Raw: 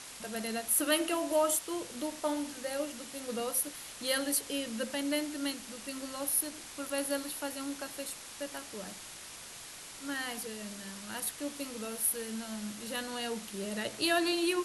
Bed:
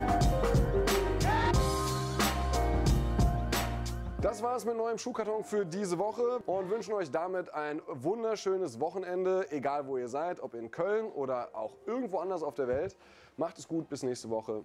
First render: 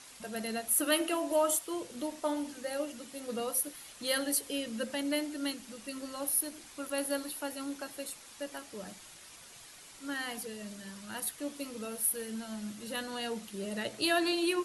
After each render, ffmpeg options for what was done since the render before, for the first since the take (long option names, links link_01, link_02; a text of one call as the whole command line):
ffmpeg -i in.wav -af "afftdn=noise_reduction=7:noise_floor=-47" out.wav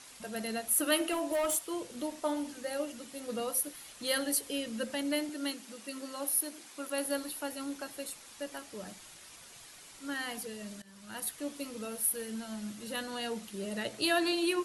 ffmpeg -i in.wav -filter_complex "[0:a]asplit=3[link_01][link_02][link_03];[link_01]afade=type=out:start_time=1.11:duration=0.02[link_04];[link_02]asoftclip=type=hard:threshold=-27dB,afade=type=in:start_time=1.11:duration=0.02,afade=type=out:start_time=1.54:duration=0.02[link_05];[link_03]afade=type=in:start_time=1.54:duration=0.02[link_06];[link_04][link_05][link_06]amix=inputs=3:normalize=0,asettb=1/sr,asplit=3[link_07][link_08][link_09];[link_07]atrim=end=5.294[link_10];[link_08]atrim=start=5.29:end=7.05,asetpts=PTS-STARTPTS,afade=type=in:duration=0.004:curve=qsin,afade=type=out:start_time=1.756:duration=0.004:curve=qsin,highpass=200[link_11];[link_09]atrim=start=7.046[link_12];[link_10][link_11]acrossfade=duration=0.004:curve1=hsin:curve2=qsin[link_13];[link_13][link_12]acrossfade=duration=0.004:curve1=qsin:curve2=hsin,asplit=2[link_14][link_15];[link_14]atrim=end=10.82,asetpts=PTS-STARTPTS,afade=type=out:start_time=10.816:duration=0.004:curve=hsin:silence=0.125893[link_16];[link_15]atrim=start=10.82,asetpts=PTS-STARTPTS,afade=type=in:duration=0.6:curve=qsin:silence=0.125893[link_17];[link_16][link_17]concat=n=2:v=0:a=1" out.wav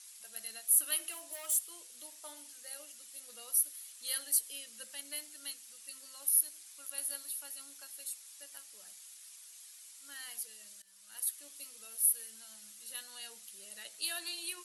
ffmpeg -i in.wav -af "aderivative" out.wav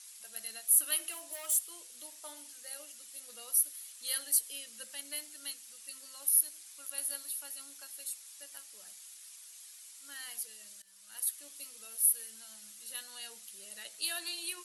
ffmpeg -i in.wav -af "volume=1.5dB" out.wav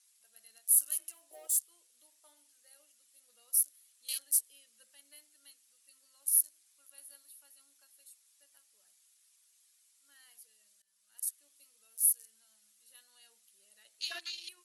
ffmpeg -i in.wav -af "afwtdn=0.01,equalizer=frequency=160:width=1.1:gain=-5.5" out.wav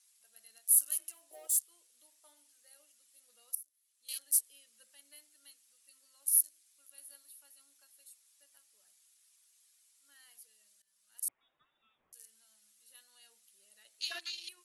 ffmpeg -i in.wav -filter_complex "[0:a]asettb=1/sr,asplit=3[link_01][link_02][link_03];[link_01]atrim=end=6.304[link_04];[link_02]atrim=start=6.3:end=7.03,asetpts=PTS-STARTPTS,afade=type=in:duration=0.004:curve=qsin,afade=type=out:start_time=0.726:duration=0.004:curve=qsin,equalizer=frequency=960:width_type=o:width=1.4:gain=-4.5[link_05];[link_03]atrim=start=7.026[link_06];[link_04][link_05]acrossfade=duration=0.004:curve1=hsin:curve2=qsin[link_07];[link_07][link_06]acrossfade=duration=0.004:curve1=qsin:curve2=hsin,asettb=1/sr,asplit=3[link_08][link_09][link_10];[link_08]atrim=end=11.284[link_11];[link_09]atrim=start=11.28:end=12.13,asetpts=PTS-STARTPTS,afade=type=in:duration=0.004:curve=qsin,afade=type=out:start_time=0.846:duration=0.004:curve=qsin,lowpass=frequency=3400:width_type=q:width=0.5098,lowpass=frequency=3400:width_type=q:width=0.6013,lowpass=frequency=3400:width_type=q:width=0.9,lowpass=frequency=3400:width_type=q:width=2.563,afreqshift=-4000[link_12];[link_10]atrim=start=12.126[link_13];[link_11][link_12]acrossfade=duration=0.004:curve1=hsin:curve2=qsin[link_14];[link_14][link_13]acrossfade=duration=0.004:curve1=qsin:curve2=hsin,asplit=2[link_15][link_16];[link_15]atrim=end=3.55,asetpts=PTS-STARTPTS,afade=type=out:start_time=3.546:duration=0.004:curve=hsin:silence=0.0841395[link_17];[link_16]atrim=start=3.55,asetpts=PTS-STARTPTS,afade=type=in:duration=0.76:curve=qua:silence=0.0841395[link_18];[link_17][link_18]concat=n=2:v=0:a=1" out.wav